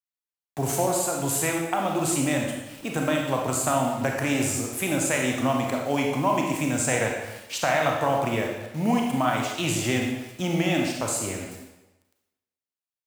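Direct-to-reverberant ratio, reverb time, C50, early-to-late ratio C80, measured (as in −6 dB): 0.0 dB, 1.0 s, 2.5 dB, 5.0 dB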